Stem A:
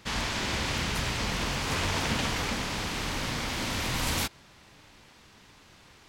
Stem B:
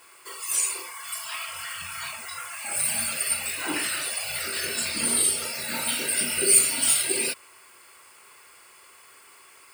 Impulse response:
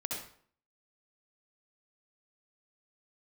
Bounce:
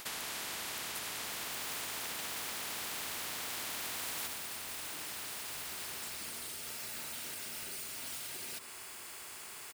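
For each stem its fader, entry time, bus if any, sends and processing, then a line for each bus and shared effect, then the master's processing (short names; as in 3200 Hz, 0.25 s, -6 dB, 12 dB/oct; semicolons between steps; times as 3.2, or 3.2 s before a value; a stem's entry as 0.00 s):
+2.0 dB, 0.00 s, send -5.5 dB, compressor, threshold -34 dBFS, peak gain reduction 10 dB; HPF 630 Hz 12 dB/oct; bell 5900 Hz -12 dB
-14.5 dB, 1.25 s, send -22.5 dB, compressor 3:1, threshold -34 dBFS, peak gain reduction 16 dB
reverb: on, RT60 0.55 s, pre-delay 59 ms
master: bell 530 Hz -11.5 dB 0.23 oct; spectral compressor 4:1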